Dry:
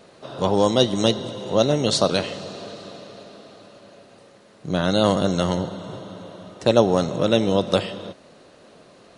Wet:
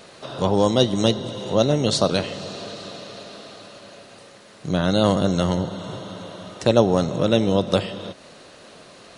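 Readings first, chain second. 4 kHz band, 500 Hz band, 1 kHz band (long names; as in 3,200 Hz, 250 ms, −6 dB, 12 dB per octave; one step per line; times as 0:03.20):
−0.5 dB, −0.5 dB, −0.5 dB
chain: low-shelf EQ 180 Hz +5.5 dB
one half of a high-frequency compander encoder only
level −1 dB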